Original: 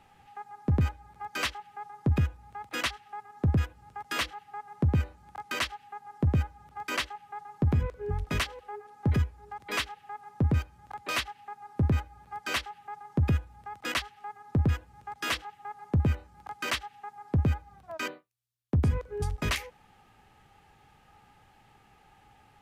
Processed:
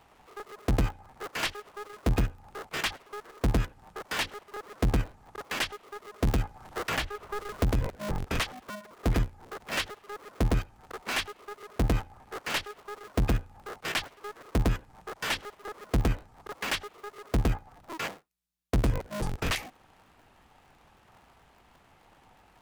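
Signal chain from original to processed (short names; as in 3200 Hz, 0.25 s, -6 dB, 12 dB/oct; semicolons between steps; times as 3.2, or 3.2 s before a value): cycle switcher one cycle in 2, inverted; 6.27–7.81 three-band squash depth 70%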